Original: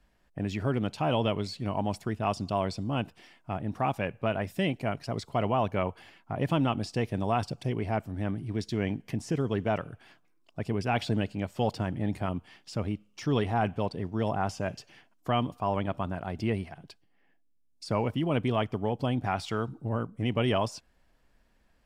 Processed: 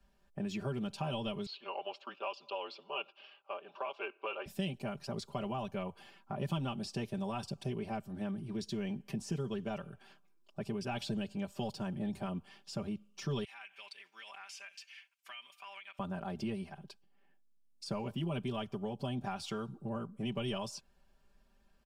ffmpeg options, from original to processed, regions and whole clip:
-filter_complex "[0:a]asettb=1/sr,asplit=3[a][b][c];[a]atrim=end=1.464[d];[b]atrim=start=1.46:end=4.46,asetpts=PTS-STARTPTS,afade=t=in:d=0.004:c=qsin,afade=t=out:st=2.996:d=0.004:c=qsin,afreqshift=-130,highpass=f=390:w=0.5412,highpass=f=390:w=1.3066,equalizer=f=510:t=q:w=4:g=-4,equalizer=f=1.1k:t=q:w=4:g=5,equalizer=f=1.9k:t=q:w=4:g=-7,equalizer=f=2.8k:t=q:w=4:g=10,lowpass=f=4.1k:w=0.5412,lowpass=f=4.1k:w=1.3066[e];[c]atrim=start=4.456[f];[d][e]acrossfade=d=0.004:c1=hsin:c2=qsin[g];[g][f]acrossfade=d=0.004:c1=qsin:c2=hsin,asettb=1/sr,asplit=3[h][i][j];[h]atrim=end=13.444[k];[i]atrim=start=13.44:end=15.99,asetpts=PTS-STARTPTS,afade=t=in:d=0.004:c=qsin,afade=t=out:st=2.546:d=0.004:c=qsin,highpass=f=2.2k:t=q:w=4.3,acompressor=threshold=-41dB:ratio=5:attack=3.2:release=140:knee=1:detection=peak[l];[j]atrim=start=15.986[m];[k][l]acrossfade=d=0.004:c1=hsin:c2=qsin[n];[n][m]acrossfade=d=0.004:c1=qsin:c2=hsin,equalizer=f=2k:t=o:w=0.22:g=-9.5,aecho=1:1:5.1:0.92,acrossover=split=140|3000[o][p][q];[p]acompressor=threshold=-31dB:ratio=6[r];[o][r][q]amix=inputs=3:normalize=0,volume=-5.5dB"

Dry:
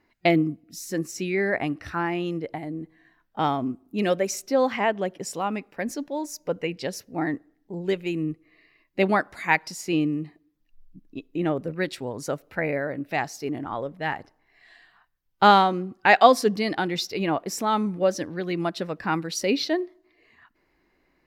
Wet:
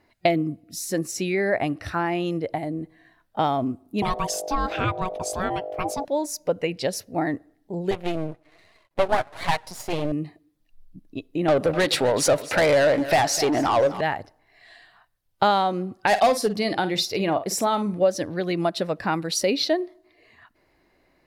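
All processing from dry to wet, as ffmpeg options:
-filter_complex "[0:a]asettb=1/sr,asplit=3[a][b][c];[a]atrim=end=4.024[d];[b]atrim=start=4.02:end=6.05,asetpts=PTS-STARTPTS,afade=t=in:d=0.004:c=qsin,afade=t=out:st=2.026:d=0.004:c=qsin,aeval=exprs='val(0)+0.0158*(sin(2*PI*50*n/s)+sin(2*PI*2*50*n/s)/2+sin(2*PI*3*50*n/s)/3+sin(2*PI*4*50*n/s)/4+sin(2*PI*5*50*n/s)/5)':c=same,aeval=exprs='val(0)*sin(2*PI*560*n/s)':c=same[e];[c]atrim=start=6.046[f];[d][e]acrossfade=d=0.004:c1=hsin:c2=qsin[g];[g][f]acrossfade=d=0.004:c1=qsin:c2=hsin,asettb=1/sr,asplit=3[h][i][j];[h]atrim=end=7.914[k];[i]atrim=start=7.91:end=10.12,asetpts=PTS-STARTPTS,afade=t=in:d=0.004:c=qsin,afade=t=out:st=2.206:d=0.004:c=qsin,equalizer=f=860:w=0.71:g=15,flanger=delay=4.2:depth=4.2:regen=-3:speed=1.2:shape=triangular,aeval=exprs='max(val(0),0)':c=same[l];[j]atrim=start=10.116[m];[k][l]acrossfade=d=0.004:c1=hsin:c2=qsin[n];[n][m]acrossfade=d=0.004:c1=qsin:c2=hsin,asettb=1/sr,asplit=3[o][p][q];[o]atrim=end=11.484[r];[p]atrim=start=11.48:end=14.01,asetpts=PTS-STARTPTS,afade=t=in:d=0.004:c=qsin,afade=t=out:st=2.526:d=0.004:c=qsin,highpass=51,asplit=2[s][t];[t]highpass=f=720:p=1,volume=25dB,asoftclip=type=tanh:threshold=-11.5dB[u];[s][u]amix=inputs=2:normalize=0,lowpass=f=4.7k:p=1,volume=-6dB,aecho=1:1:253|506|759:0.15|0.0464|0.0144,atrim=end_sample=111573[v];[q]atrim=start=14.006[w];[r][v]acrossfade=d=0.004:c1=hsin:c2=qsin[x];[x][w]acrossfade=d=0.004:c1=qsin:c2=hsin,asettb=1/sr,asplit=3[y][z][aa];[y]atrim=end=16.074[ab];[z]atrim=start=16.07:end=17.94,asetpts=PTS-STARTPTS,afade=t=in:d=0.004:c=qsin,afade=t=out:st=1.866:d=0.004:c=qsin,asoftclip=type=hard:threshold=-13dB,asplit=2[ac][ad];[ad]adelay=49,volume=-12.5dB[ae];[ac][ae]amix=inputs=2:normalize=0,atrim=end_sample=82467[af];[aa]atrim=start=17.936[ag];[ab][af]acrossfade=d=0.004:c1=hsin:c2=qsin[ah];[ah][ag]acrossfade=d=0.004:c1=qsin:c2=hsin,acompressor=threshold=-24dB:ratio=3,equalizer=f=100:t=o:w=0.67:g=7,equalizer=f=630:t=o:w=0.67:g=7,equalizer=f=4k:t=o:w=0.67:g=4,equalizer=f=10k:t=o:w=0.67:g=7,volume=2dB"

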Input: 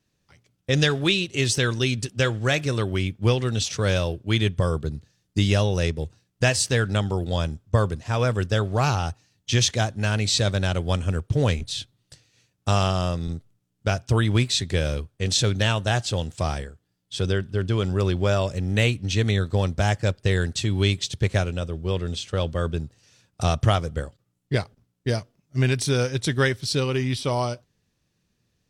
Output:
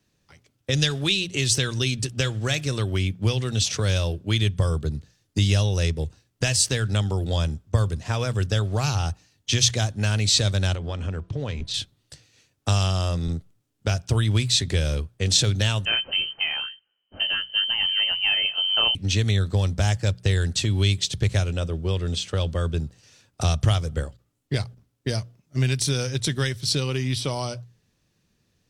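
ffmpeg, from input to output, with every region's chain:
-filter_complex "[0:a]asettb=1/sr,asplit=3[a][b][c];[a]atrim=end=10.754[d];[b]atrim=start=10.75:end=11.74,asetpts=PTS-STARTPTS,afade=t=in:d=0.004:c=qsin,afade=t=out:st=0.986:d=0.004:c=qsin,lowpass=5k,acompressor=threshold=-28dB:ratio=5:attack=3.2:release=140:knee=1:detection=peak,bandreject=f=334.7:t=h:w=4,bandreject=f=669.4:t=h:w=4,bandreject=f=1.0041k:t=h:w=4[e];[c]atrim=start=11.736[f];[d][e]acrossfade=d=0.004:c1=hsin:c2=qsin[g];[g][f]acrossfade=d=0.004:c1=qsin:c2=hsin,asettb=1/sr,asplit=3[h][i][j];[h]atrim=end=15.854[k];[i]atrim=start=15.85:end=18.95,asetpts=PTS-STARTPTS,afade=t=in:d=0.004:c=qsin,afade=t=out:st=3.096:d=0.004:c=qsin,aemphasis=mode=production:type=75kf,flanger=delay=16.5:depth=4.9:speed=1.3,lowpass=f=2.7k:t=q:w=0.5098,lowpass=f=2.7k:t=q:w=0.6013,lowpass=f=2.7k:t=q:w=0.9,lowpass=f=2.7k:t=q:w=2.563,afreqshift=-3200[l];[j]atrim=start=18.946[m];[k][l]acrossfade=d=0.004:c1=hsin:c2=qsin[n];[n][m]acrossfade=d=0.004:c1=qsin:c2=hsin,bandreject=f=60:t=h:w=6,bandreject=f=120:t=h:w=6,bandreject=f=180:t=h:w=6,acrossover=split=130|3000[o][p][q];[p]acompressor=threshold=-30dB:ratio=6[r];[o][r][q]amix=inputs=3:normalize=0,volume=3.5dB"

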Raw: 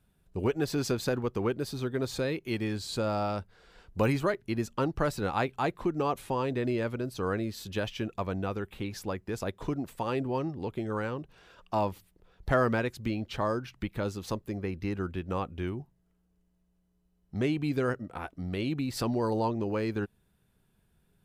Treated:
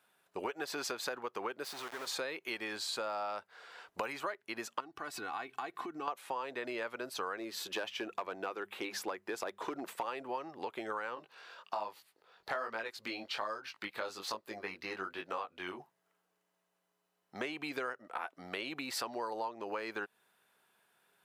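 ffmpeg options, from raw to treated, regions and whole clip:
-filter_complex "[0:a]asettb=1/sr,asplit=3[a][b][c];[a]atrim=end=1.644[d];[b]atrim=start=1.64:end=2.07,asetpts=PTS-STARTPTS,afade=t=in:d=0.004:c=qsin,afade=t=out:st=0.426:d=0.004:c=qsin,acompressor=threshold=-38dB:ratio=6:attack=3.2:release=140:knee=1:detection=peak,aeval=exprs='val(0)*gte(abs(val(0)),0.00631)':c=same[e];[c]atrim=start=2.066[f];[d][e]acrossfade=d=0.004:c1=hsin:c2=qsin[g];[g][f]acrossfade=d=0.004:c1=qsin:c2=hsin,asettb=1/sr,asplit=3[h][i][j];[h]atrim=end=4.804[k];[i]atrim=start=4.8:end=6.08,asetpts=PTS-STARTPTS,afade=t=in:d=0.004:c=qsin,afade=t=out:st=1.276:d=0.004:c=qsin,acompressor=threshold=-41dB:ratio=4:attack=3.2:release=140:knee=1:detection=peak,lowshelf=f=320:t=q:w=1.5:g=8,aecho=1:1:2.7:0.61,atrim=end_sample=56448[l];[j]atrim=start=6.076[m];[k][l]acrossfade=d=0.004:c1=hsin:c2=qsin[n];[n][m]acrossfade=d=0.004:c1=qsin:c2=hsin,asettb=1/sr,asplit=3[o][p][q];[o]atrim=end=7.374[r];[p]atrim=start=7.37:end=10.06,asetpts=PTS-STARTPTS,afade=t=in:d=0.004:c=qsin,afade=t=out:st=2.686:d=0.004:c=qsin,asoftclip=type=hard:threshold=-24.5dB,equalizer=f=350:t=o:w=0.62:g=7,bandreject=f=50:t=h:w=6,bandreject=f=100:t=h:w=6,bandreject=f=150:t=h:w=6,bandreject=f=200:t=h:w=6[s];[q]atrim=start=10.056[t];[r][s]acrossfade=d=0.004:c1=hsin:c2=qsin[u];[u][t]acrossfade=d=0.004:c1=qsin:c2=hsin,asettb=1/sr,asplit=3[v][w][x];[v]atrim=end=11.154[y];[w]atrim=start=11.15:end=15.8,asetpts=PTS-STARTPTS,afade=t=in:d=0.004:c=qsin,afade=t=out:st=4.646:d=0.004:c=qsin,equalizer=f=4.4k:t=o:w=0.38:g=7,flanger=delay=18:depth=3.8:speed=1.2[z];[x]atrim=start=15.796[aa];[y][z]acrossfade=d=0.004:c1=hsin:c2=qsin[ab];[ab][aa]acrossfade=d=0.004:c1=qsin:c2=hsin,highpass=900,highshelf=f=2.3k:g=-9,acompressor=threshold=-47dB:ratio=6,volume=11.5dB"

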